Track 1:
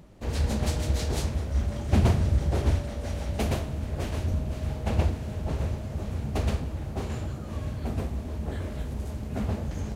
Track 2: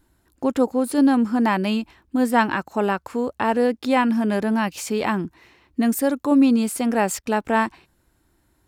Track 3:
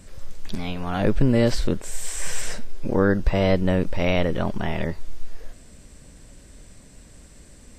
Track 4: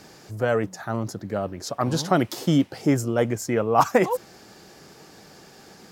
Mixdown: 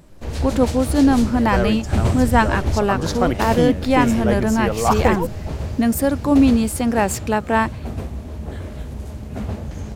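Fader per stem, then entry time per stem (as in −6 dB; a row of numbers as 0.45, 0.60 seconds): +2.5, +2.0, −11.5, 0.0 decibels; 0.00, 0.00, 0.00, 1.10 seconds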